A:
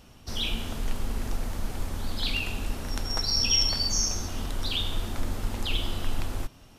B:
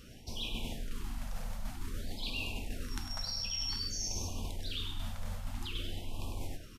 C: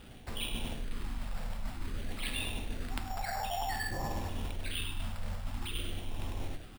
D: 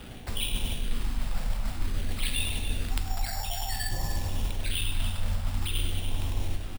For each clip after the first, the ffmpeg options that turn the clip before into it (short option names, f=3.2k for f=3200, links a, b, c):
-af "aecho=1:1:101|202|303:0.422|0.11|0.0285,areverse,acompressor=threshold=-33dB:ratio=12,areverse,afftfilt=real='re*(1-between(b*sr/1024,320*pow(1700/320,0.5+0.5*sin(2*PI*0.52*pts/sr))/1.41,320*pow(1700/320,0.5+0.5*sin(2*PI*0.52*pts/sr))*1.41))':imag='im*(1-between(b*sr/1024,320*pow(1700/320,0.5+0.5*sin(2*PI*0.52*pts/sr))/1.41,320*pow(1700/320,0.5+0.5*sin(2*PI*0.52*pts/sr))*1.41))':win_size=1024:overlap=0.75"
-af "acrusher=samples=7:mix=1:aa=0.000001,volume=1.5dB"
-filter_complex "[0:a]acrossover=split=130|3000[a][b][c];[b]acompressor=threshold=-50dB:ratio=4[d];[a][d][c]amix=inputs=3:normalize=0,aecho=1:1:289:0.335,volume=8.5dB"